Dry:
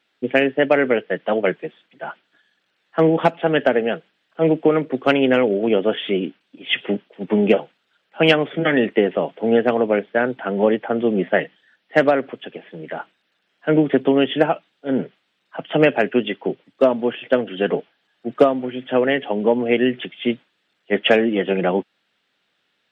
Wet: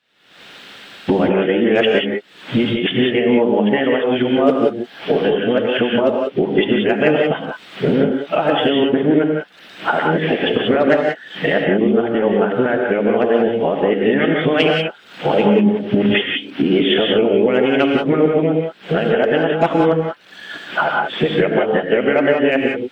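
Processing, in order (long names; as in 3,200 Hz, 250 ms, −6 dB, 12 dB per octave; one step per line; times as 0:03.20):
played backwards from end to start
camcorder AGC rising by 72 dB per second
reverb whose tail is shaped and stops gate 210 ms rising, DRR 1 dB
level −2 dB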